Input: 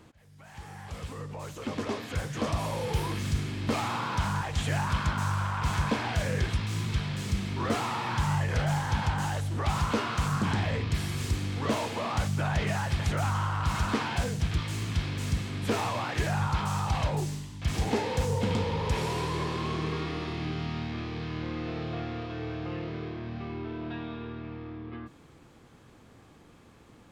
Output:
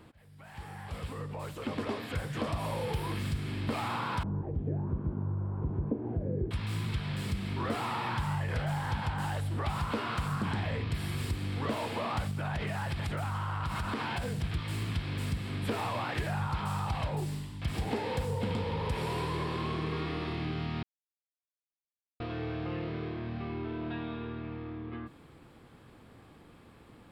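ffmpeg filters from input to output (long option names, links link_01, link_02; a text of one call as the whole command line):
ffmpeg -i in.wav -filter_complex "[0:a]asettb=1/sr,asplit=3[link_01][link_02][link_03];[link_01]atrim=end=4.234[link_04];[link_02]atrim=start=4.23:end=6.51,asetpts=PTS-STARTPTS,afade=type=in:duration=0.004:curve=qsin,afade=type=out:start_time=2.276:duration=0.004:curve=qsin,lowpass=frequency=370:width_type=q:width=3.5[link_05];[link_03]atrim=start=6.506[link_06];[link_04][link_05]acrossfade=duration=0.004:curve1=hsin:curve2=qsin[link_07];[link_07][link_06]acrossfade=duration=0.004:curve1=qsin:curve2=hsin,asettb=1/sr,asplit=3[link_08][link_09][link_10];[link_08]atrim=end=12.314[link_11];[link_09]atrim=start=12.31:end=14.44,asetpts=PTS-STARTPTS,afade=type=in:duration=0.004:curve=qsin,afade=type=out:start_time=2.126:duration=0.004:curve=qsin,acompressor=threshold=-28dB:ratio=6:attack=3.2:release=140:knee=1:detection=peak[link_12];[link_10]atrim=start=14.436[link_13];[link_11][link_12]acrossfade=duration=0.004:curve1=hsin:curve2=qsin[link_14];[link_14][link_13]acrossfade=duration=0.004:curve1=qsin:curve2=hsin,asplit=3[link_15][link_16][link_17];[link_15]atrim=end=20.83,asetpts=PTS-STARTPTS,afade=type=out:start_time=20.826:duration=0.004:curve=hsin[link_18];[link_16]atrim=start=20.83:end=22.2,asetpts=PTS-STARTPTS,volume=0[link_19];[link_17]atrim=start=22.2,asetpts=PTS-STARTPTS,afade=type=in:duration=0.004:curve=hsin[link_20];[link_18][link_19][link_20]concat=n=3:v=0:a=1,equalizer=frequency=6300:width_type=o:width=0.4:gain=-13,acompressor=threshold=-30dB:ratio=3" out.wav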